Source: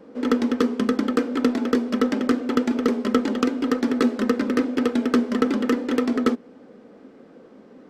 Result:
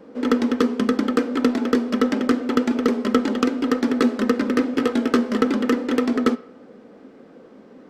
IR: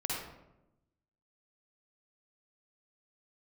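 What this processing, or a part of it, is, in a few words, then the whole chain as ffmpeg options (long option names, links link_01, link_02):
filtered reverb send: -filter_complex "[0:a]asplit=2[link_01][link_02];[link_02]highpass=480,lowpass=6300[link_03];[1:a]atrim=start_sample=2205[link_04];[link_03][link_04]afir=irnorm=-1:irlink=0,volume=-21.5dB[link_05];[link_01][link_05]amix=inputs=2:normalize=0,asettb=1/sr,asplit=3[link_06][link_07][link_08];[link_06]atrim=end=4.724[link_09];[link_07]atrim=start=4.72:end=5.43,asetpts=PTS-STARTPTS,afade=type=in:duration=0.004:curve=qsin,afade=type=out:start_time=0.706:duration=0.004:curve=qsin,asplit=2[link_10][link_11];[link_11]adelay=18,volume=-7.5dB[link_12];[link_10][link_12]amix=inputs=2:normalize=0,atrim=end_sample=31311[link_13];[link_08]atrim=start=5.426[link_14];[link_09][link_13]acrossfade=duration=0.004:curve1=hsin:curve2=qsin[link_15];[link_15][link_14]acrossfade=duration=0.004:curve1=qsin:curve2=hsin,volume=1.5dB"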